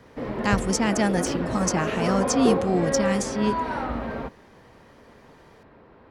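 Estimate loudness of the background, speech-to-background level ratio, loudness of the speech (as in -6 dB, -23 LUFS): -27.5 LUFS, 2.5 dB, -25.0 LUFS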